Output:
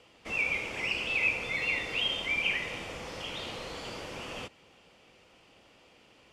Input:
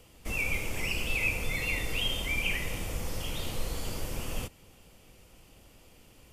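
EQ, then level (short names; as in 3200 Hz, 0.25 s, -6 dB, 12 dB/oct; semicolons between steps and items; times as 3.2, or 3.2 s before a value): HPF 470 Hz 6 dB/oct; LPF 4100 Hz 12 dB/oct; +3.0 dB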